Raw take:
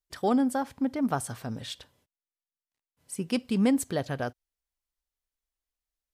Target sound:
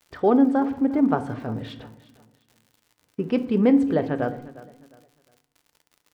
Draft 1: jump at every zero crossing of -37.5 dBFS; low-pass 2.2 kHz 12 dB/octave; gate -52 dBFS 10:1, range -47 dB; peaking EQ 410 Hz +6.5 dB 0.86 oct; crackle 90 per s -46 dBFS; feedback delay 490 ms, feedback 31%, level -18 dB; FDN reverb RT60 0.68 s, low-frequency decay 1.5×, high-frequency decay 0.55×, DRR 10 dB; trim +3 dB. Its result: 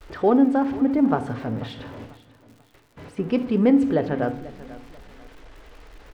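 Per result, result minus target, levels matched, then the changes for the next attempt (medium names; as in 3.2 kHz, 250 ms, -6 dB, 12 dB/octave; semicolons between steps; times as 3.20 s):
jump at every zero crossing: distortion +11 dB; echo 134 ms late
change: jump at every zero crossing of -49.5 dBFS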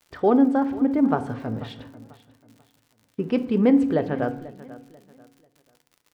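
echo 134 ms late
change: feedback delay 356 ms, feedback 31%, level -18 dB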